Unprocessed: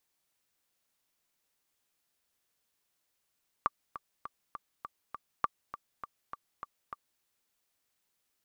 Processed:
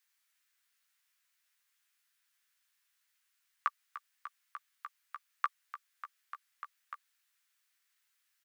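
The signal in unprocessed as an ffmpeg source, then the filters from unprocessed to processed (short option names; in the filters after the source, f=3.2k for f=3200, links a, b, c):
-f lavfi -i "aevalsrc='pow(10,(-13.5-13.5*gte(mod(t,6*60/202),60/202))/20)*sin(2*PI*1170*mod(t,60/202))*exp(-6.91*mod(t,60/202)/0.03)':d=3.56:s=44100"
-filter_complex "[0:a]highpass=f=1.6k:t=q:w=1.8,asplit=2[a][b];[b]adelay=14,volume=-6.5dB[c];[a][c]amix=inputs=2:normalize=0"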